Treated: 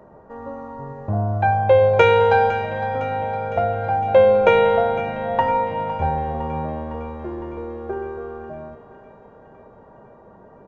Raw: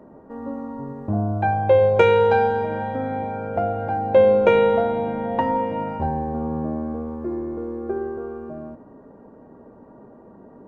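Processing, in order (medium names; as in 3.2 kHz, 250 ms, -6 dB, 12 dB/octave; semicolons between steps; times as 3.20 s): peaking EQ 270 Hz -13 dB 0.94 oct; on a send: thinning echo 508 ms, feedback 66%, high-pass 480 Hz, level -13 dB; on the sum: resampled via 16 kHz; trim +4 dB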